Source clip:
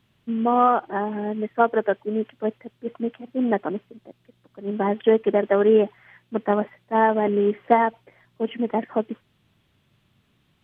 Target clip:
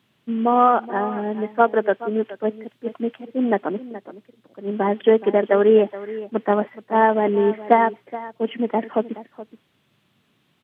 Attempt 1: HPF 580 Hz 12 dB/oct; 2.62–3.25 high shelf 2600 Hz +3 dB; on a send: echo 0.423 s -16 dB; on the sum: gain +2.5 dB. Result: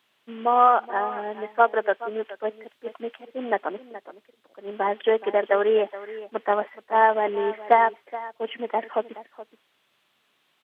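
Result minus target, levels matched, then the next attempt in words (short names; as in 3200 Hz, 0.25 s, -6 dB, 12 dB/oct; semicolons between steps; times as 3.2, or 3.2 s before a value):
125 Hz band -13.0 dB
HPF 170 Hz 12 dB/oct; 2.62–3.25 high shelf 2600 Hz +3 dB; on a send: echo 0.423 s -16 dB; on the sum: gain +2.5 dB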